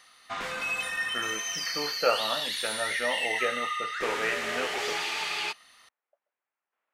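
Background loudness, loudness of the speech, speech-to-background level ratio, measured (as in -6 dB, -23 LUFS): -30.0 LUFS, -33.5 LUFS, -3.5 dB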